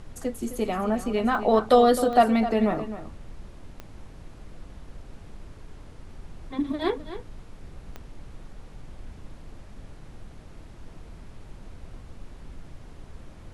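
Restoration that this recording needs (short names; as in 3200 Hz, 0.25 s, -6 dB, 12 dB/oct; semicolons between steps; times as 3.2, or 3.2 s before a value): de-click; noise print and reduce 26 dB; inverse comb 0.26 s -12.5 dB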